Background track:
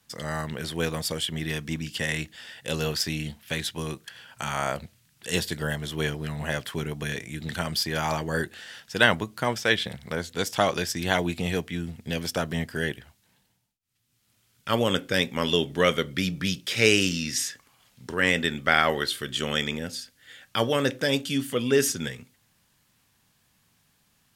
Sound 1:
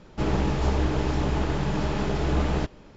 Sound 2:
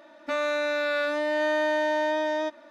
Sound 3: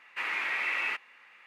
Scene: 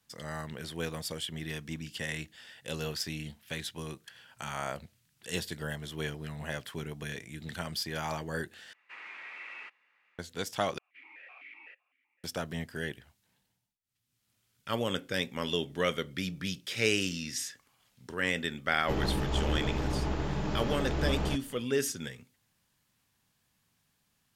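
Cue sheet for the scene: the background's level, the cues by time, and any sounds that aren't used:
background track -8 dB
8.73 s: replace with 3 -14 dB + low-pass 7.7 kHz
10.78 s: replace with 3 -8.5 dB + stepped vowel filter 7.9 Hz
18.70 s: add 1 -6.5 dB
not used: 2

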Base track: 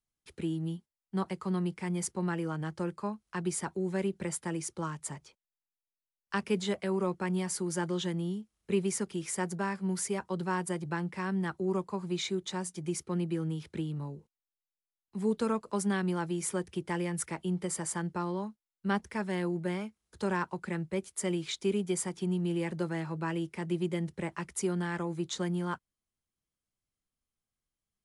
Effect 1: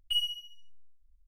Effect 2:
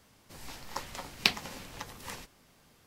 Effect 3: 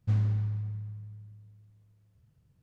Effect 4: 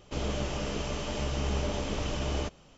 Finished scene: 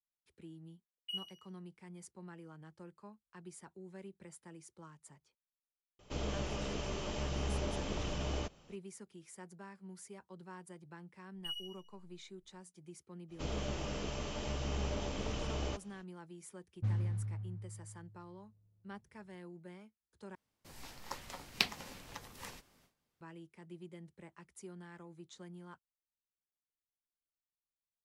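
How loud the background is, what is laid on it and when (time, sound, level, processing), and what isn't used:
base track -18.5 dB
0.98 s: add 1 -18 dB + step-sequenced high-pass 9.8 Hz 480–6700 Hz
5.99 s: add 4 -6 dB
11.34 s: add 1 -13 dB
13.28 s: add 4 -6.5 dB, fades 0.05 s
16.75 s: add 3 -7.5 dB + level-controlled noise filter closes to 700 Hz, open at -24 dBFS
20.35 s: replace with 2 -6 dB + gate with hold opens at -50 dBFS, closes at -59 dBFS, hold 19 ms, range -17 dB

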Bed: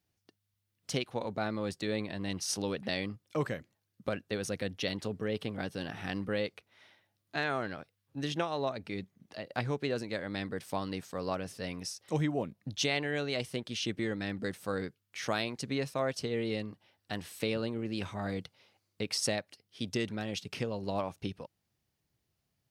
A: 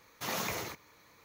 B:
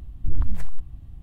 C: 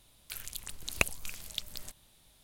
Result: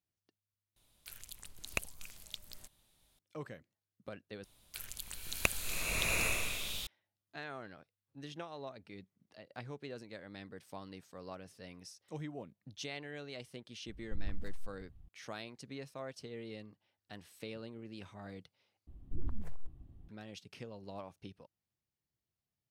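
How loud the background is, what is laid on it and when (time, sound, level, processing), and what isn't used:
bed -12.5 dB
0.76 s: replace with C -8.5 dB
4.44 s: replace with C -3.5 dB + swelling reverb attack 800 ms, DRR -5 dB
13.87 s: add B -16.5 dB
18.87 s: replace with B -16 dB + peaking EQ 360 Hz +11.5 dB 2.1 oct
not used: A

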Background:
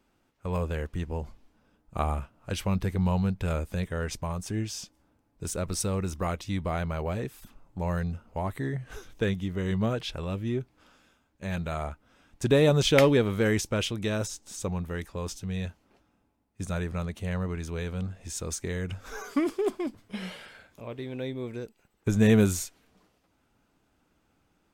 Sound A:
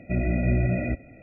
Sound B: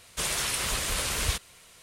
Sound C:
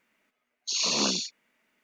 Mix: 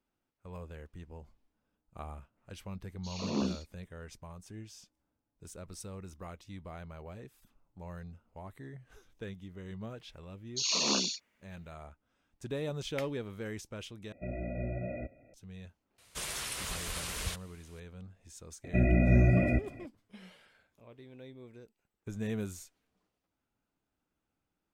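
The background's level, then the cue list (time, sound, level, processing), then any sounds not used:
background -15.5 dB
2.36 s: add C -9 dB, fades 0.02 s + tilt EQ -4.5 dB/octave
9.89 s: add C -3.5 dB
14.12 s: replace with A -15 dB + peaking EQ 570 Hz +9.5 dB 0.72 oct
15.98 s: add B -9 dB
18.64 s: add A -0.5 dB

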